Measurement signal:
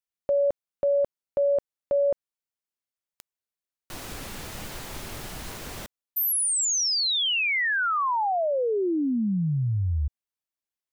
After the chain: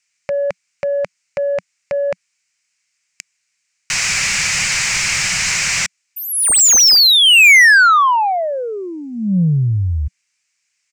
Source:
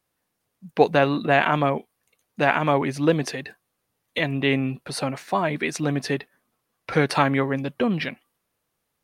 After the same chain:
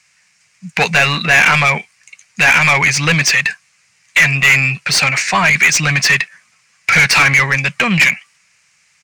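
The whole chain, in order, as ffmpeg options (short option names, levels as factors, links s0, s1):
-filter_complex "[0:a]acontrast=52,firequalizer=gain_entry='entry(180,0);entry(260,-21);entry(2300,8);entry(3400,-6);entry(5000,6);entry(7400,9);entry(12000,-18)':delay=0.05:min_phase=1,asplit=2[s0][s1];[s1]highpass=f=720:p=1,volume=17.8,asoftclip=type=tanh:threshold=0.891[s2];[s0][s2]amix=inputs=2:normalize=0,lowpass=f=4700:p=1,volume=0.501"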